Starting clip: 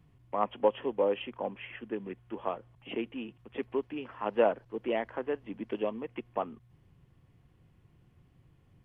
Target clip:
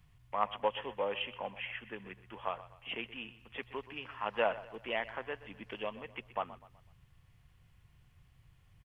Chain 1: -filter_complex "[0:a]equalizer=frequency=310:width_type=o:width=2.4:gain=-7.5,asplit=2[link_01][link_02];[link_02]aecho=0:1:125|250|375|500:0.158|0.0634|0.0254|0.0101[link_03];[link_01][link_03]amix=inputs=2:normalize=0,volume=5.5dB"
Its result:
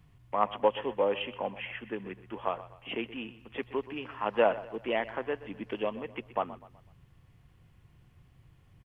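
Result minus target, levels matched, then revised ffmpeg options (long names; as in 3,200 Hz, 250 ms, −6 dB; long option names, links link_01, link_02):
250 Hz band +4.5 dB
-filter_complex "[0:a]equalizer=frequency=310:width_type=o:width=2.4:gain=-19,asplit=2[link_01][link_02];[link_02]aecho=0:1:125|250|375|500:0.158|0.0634|0.0254|0.0101[link_03];[link_01][link_03]amix=inputs=2:normalize=0,volume=5.5dB"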